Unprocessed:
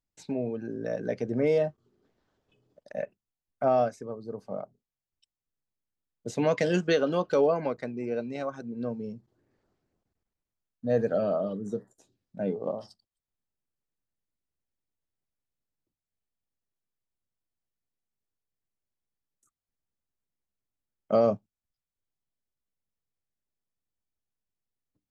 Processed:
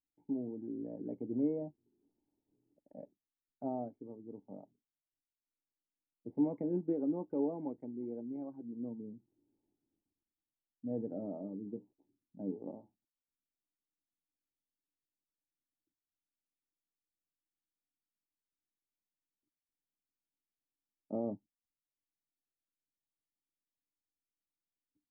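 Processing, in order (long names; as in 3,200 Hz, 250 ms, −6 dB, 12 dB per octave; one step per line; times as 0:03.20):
formant resonators in series u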